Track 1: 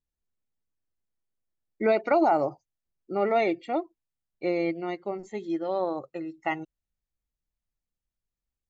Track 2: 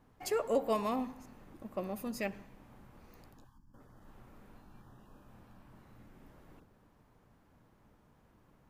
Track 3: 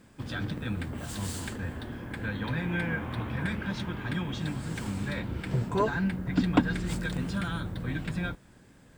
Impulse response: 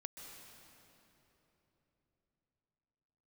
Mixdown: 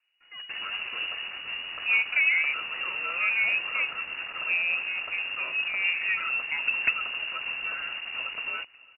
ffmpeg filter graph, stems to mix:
-filter_complex "[0:a]equalizer=f=2k:t=o:w=1.6:g=-13,adelay=50,volume=0dB[a];[1:a]lowpass=1.4k,aeval=exprs='abs(val(0))':c=same,volume=-9dB,asplit=2[b][c];[c]volume=-4dB[d];[2:a]bandreject=f=2.1k:w=12,acontrast=67,acrusher=bits=4:mix=0:aa=0.000001,adelay=300,volume=-8.5dB,asplit=2[e][f];[f]volume=-23dB[g];[d][g]amix=inputs=2:normalize=0,aecho=0:1:623|1246|1869|2492|3115|3738|4361|4984:1|0.56|0.314|0.176|0.0983|0.0551|0.0308|0.0173[h];[a][b][e][h]amix=inputs=4:normalize=0,lowpass=f=2.5k:t=q:w=0.5098,lowpass=f=2.5k:t=q:w=0.6013,lowpass=f=2.5k:t=q:w=0.9,lowpass=f=2.5k:t=q:w=2.563,afreqshift=-2900"

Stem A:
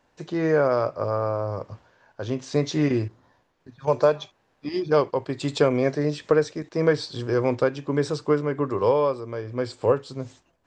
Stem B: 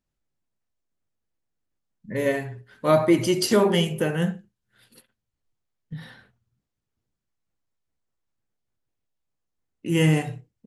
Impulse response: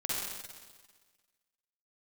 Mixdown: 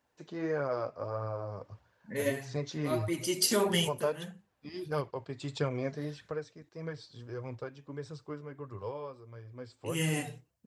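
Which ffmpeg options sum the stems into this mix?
-filter_complex "[0:a]asubboost=boost=3.5:cutoff=140,volume=-7dB,afade=t=out:st=5.8:d=0.66:silence=0.446684,asplit=2[a][b];[1:a]highshelf=f=3.4k:g=12,volume=-4.5dB[c];[b]apad=whole_len=470238[d];[c][d]sidechaincompress=threshold=-33dB:ratio=8:attack=31:release=806[e];[a][e]amix=inputs=2:normalize=0,highpass=66,flanger=delay=0.4:depth=4.5:regen=48:speed=1.6:shape=triangular"

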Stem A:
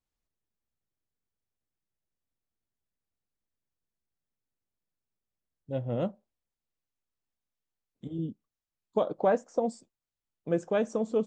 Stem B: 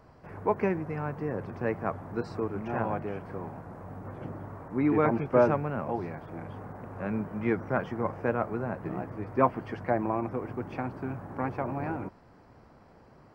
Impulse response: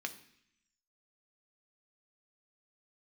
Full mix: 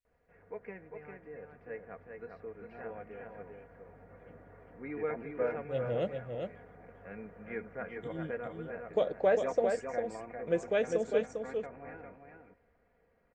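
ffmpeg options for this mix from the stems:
-filter_complex "[0:a]volume=-6dB,asplit=2[a][b];[b]volume=-5.5dB[c];[1:a]lowpass=2.3k,aecho=1:1:4.2:0.58,adelay=50,volume=-16dB,asplit=2[d][e];[e]volume=-5dB[f];[c][f]amix=inputs=2:normalize=0,aecho=0:1:401:1[g];[a][d][g]amix=inputs=3:normalize=0,equalizer=f=125:t=o:w=1:g=-3,equalizer=f=250:t=o:w=1:g=-10,equalizer=f=500:t=o:w=1:g=5,equalizer=f=1k:t=o:w=1:g=-11,equalizer=f=2k:t=o:w=1:g=8,dynaudnorm=f=800:g=7:m=5dB"

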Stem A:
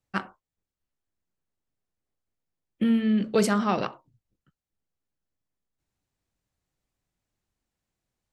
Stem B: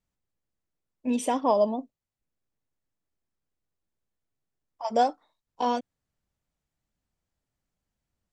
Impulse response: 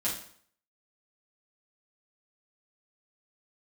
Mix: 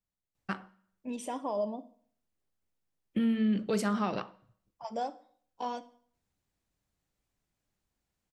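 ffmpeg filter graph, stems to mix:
-filter_complex "[0:a]adelay=350,volume=-1dB,asplit=2[a][b];[b]volume=-22dB[c];[1:a]alimiter=limit=-16.5dB:level=0:latency=1,volume=-10dB,asplit=2[d][e];[e]volume=-16dB[f];[2:a]atrim=start_sample=2205[g];[c][f]amix=inputs=2:normalize=0[h];[h][g]afir=irnorm=-1:irlink=0[i];[a][d][i]amix=inputs=3:normalize=0,alimiter=limit=-21dB:level=0:latency=1:release=386"

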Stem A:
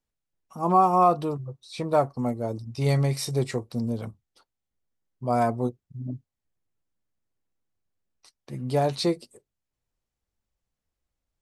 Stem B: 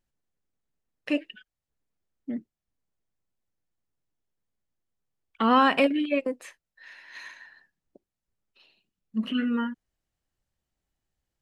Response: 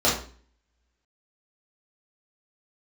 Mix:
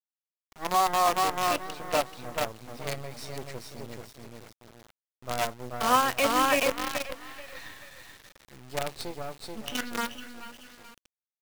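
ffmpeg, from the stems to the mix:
-filter_complex "[0:a]lowshelf=f=110:g=6.5,volume=-10dB,asplit=3[a][b][c];[b]volume=-3.5dB[d];[1:a]lowpass=f=4.9k:w=0.5412,lowpass=f=4.9k:w=1.3066,adelay=400,volume=-3dB,asplit=2[e][f];[f]volume=-6.5dB[g];[c]apad=whole_len=521203[h];[e][h]sidechaincompress=threshold=-46dB:ratio=6:attack=9.6:release=254[i];[d][g]amix=inputs=2:normalize=0,aecho=0:1:432|864|1296|1728|2160:1|0.35|0.122|0.0429|0.015[j];[a][i][j]amix=inputs=3:normalize=0,acrossover=split=480 7500:gain=0.224 1 0.0891[k][l][m];[k][l][m]amix=inputs=3:normalize=0,acontrast=48,acrusher=bits=5:dc=4:mix=0:aa=0.000001"

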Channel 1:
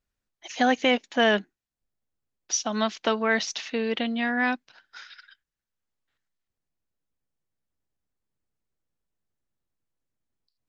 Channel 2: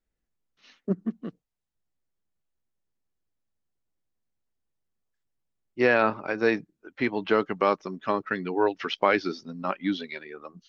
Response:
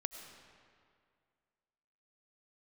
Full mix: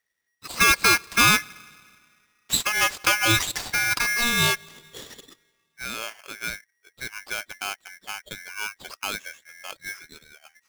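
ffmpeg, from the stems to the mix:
-filter_complex "[0:a]volume=2.5dB,asplit=3[a][b][c];[b]volume=-16.5dB[d];[1:a]volume=-9dB[e];[c]apad=whole_len=471426[f];[e][f]sidechaincompress=threshold=-38dB:ratio=8:attack=36:release=1240[g];[2:a]atrim=start_sample=2205[h];[d][h]afir=irnorm=-1:irlink=0[i];[a][g][i]amix=inputs=3:normalize=0,aeval=exprs='val(0)*sgn(sin(2*PI*1900*n/s))':c=same"

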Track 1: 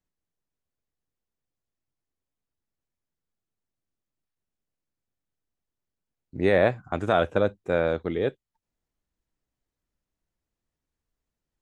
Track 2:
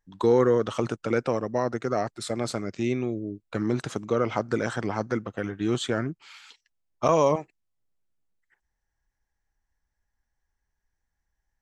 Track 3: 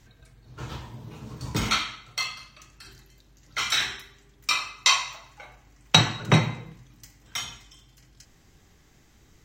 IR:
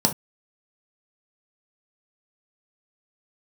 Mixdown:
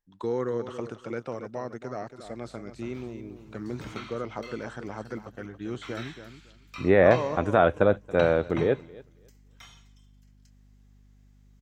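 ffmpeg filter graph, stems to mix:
-filter_complex "[0:a]adelay=450,volume=2dB,asplit=2[a][b];[b]volume=-22.5dB[c];[1:a]volume=-9dB,asplit=2[d][e];[e]volume=-10.5dB[f];[2:a]aeval=exprs='val(0)+0.00891*(sin(2*PI*50*n/s)+sin(2*PI*2*50*n/s)/2+sin(2*PI*3*50*n/s)/3+sin(2*PI*4*50*n/s)/4+sin(2*PI*5*50*n/s)/5)':c=same,adelay=2250,volume=-14.5dB[g];[c][f]amix=inputs=2:normalize=0,aecho=0:1:278|556|834:1|0.18|0.0324[h];[a][d][g][h]amix=inputs=4:normalize=0,acrossover=split=2800[i][j];[j]acompressor=threshold=-52dB:ratio=4:attack=1:release=60[k];[i][k]amix=inputs=2:normalize=0"

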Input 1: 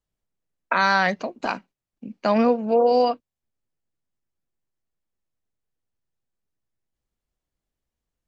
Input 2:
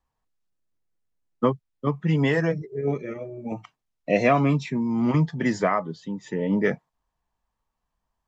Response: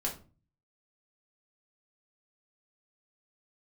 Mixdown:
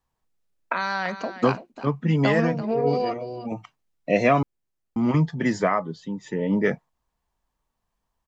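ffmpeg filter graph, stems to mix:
-filter_complex "[0:a]acompressor=threshold=-22dB:ratio=6,volume=0dB,asplit=2[a][b];[b]volume=-12.5dB[c];[1:a]volume=0.5dB,asplit=3[d][e][f];[d]atrim=end=4.43,asetpts=PTS-STARTPTS,afade=t=out:st=4.426:d=0.004:c=hsin[g];[e]atrim=start=4.43:end=4.96,asetpts=PTS-STARTPTS,volume=0[h];[f]atrim=start=4.96,asetpts=PTS-STARTPTS,afade=t=in:d=0.004:c=hsin[i];[g][h][i]concat=n=3:v=0:a=1[j];[c]aecho=0:1:337:1[k];[a][j][k]amix=inputs=3:normalize=0"

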